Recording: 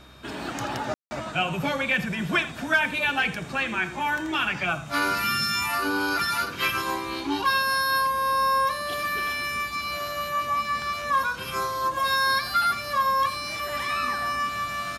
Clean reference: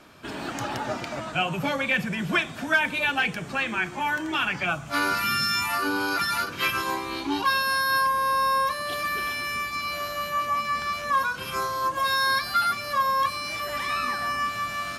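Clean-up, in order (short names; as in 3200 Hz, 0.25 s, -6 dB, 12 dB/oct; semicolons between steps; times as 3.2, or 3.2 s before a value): de-hum 65 Hz, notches 3; notch 3700 Hz, Q 30; room tone fill 0.94–1.11; inverse comb 82 ms -15 dB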